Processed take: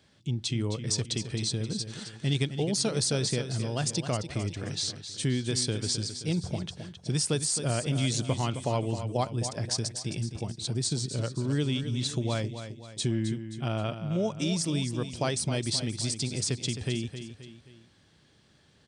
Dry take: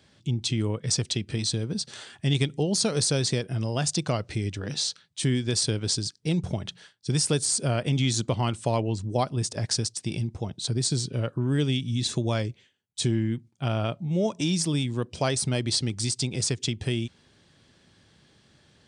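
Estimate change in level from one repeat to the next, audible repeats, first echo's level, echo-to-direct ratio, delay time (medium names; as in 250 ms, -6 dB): -6.5 dB, 3, -10.0 dB, -9.0 dB, 264 ms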